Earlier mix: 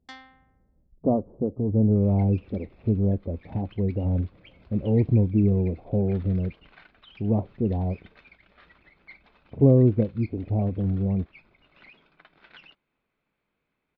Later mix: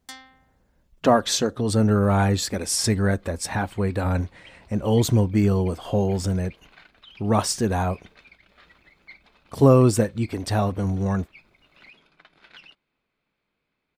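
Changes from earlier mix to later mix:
speech: remove Gaussian low-pass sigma 15 samples; master: remove Gaussian low-pass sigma 2.1 samples

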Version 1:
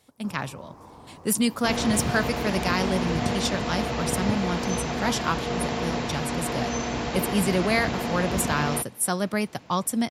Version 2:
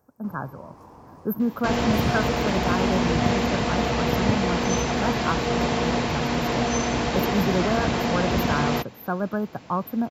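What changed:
speech: add brick-wall FIR band-stop 1.7–12 kHz; second sound +4.5 dB

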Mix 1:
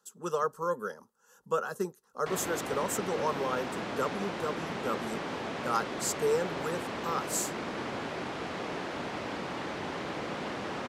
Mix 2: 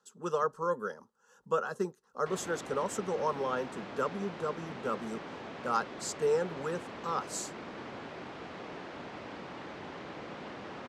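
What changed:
background -7.0 dB; master: add distance through air 67 m

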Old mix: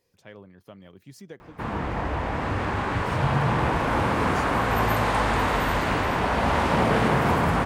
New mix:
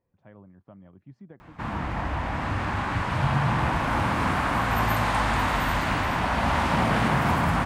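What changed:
speech: add low-pass 1 kHz 12 dB/octave; master: add peaking EQ 440 Hz -10 dB 0.67 oct

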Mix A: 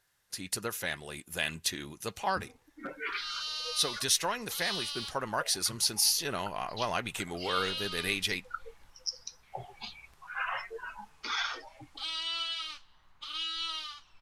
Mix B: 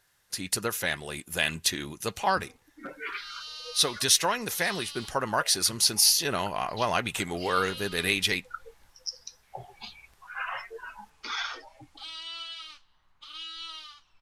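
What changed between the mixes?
speech +5.5 dB; second sound -4.5 dB

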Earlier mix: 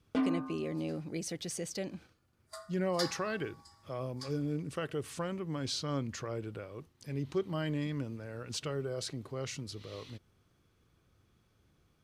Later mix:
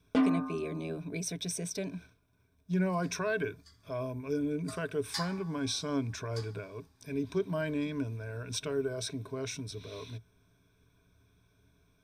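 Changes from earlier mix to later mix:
speech: add rippled EQ curve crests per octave 1.6, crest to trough 14 dB; first sound +4.5 dB; second sound: entry +2.15 s

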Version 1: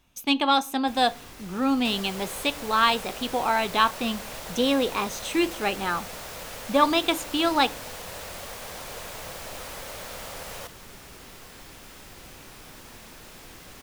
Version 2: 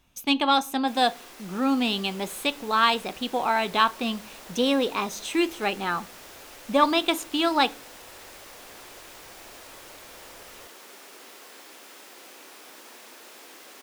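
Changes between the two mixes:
first sound: add high-pass 290 Hz 24 dB/octave; second sound -11.5 dB

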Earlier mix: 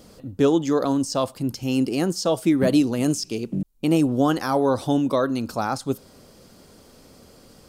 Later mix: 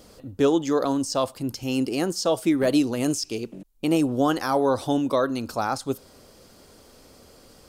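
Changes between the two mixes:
background: add frequency weighting A; master: add peaking EQ 170 Hz -6 dB 1.3 oct

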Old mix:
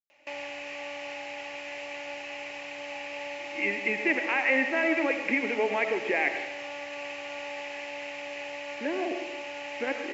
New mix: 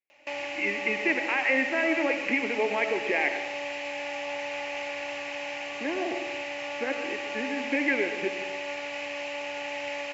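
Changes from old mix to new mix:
speech: entry -3.00 s; background +3.5 dB

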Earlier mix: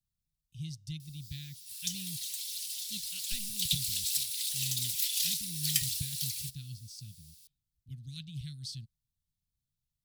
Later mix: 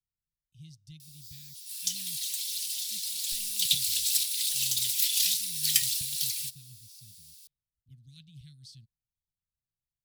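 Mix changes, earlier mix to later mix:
speech -9.0 dB; background +5.0 dB

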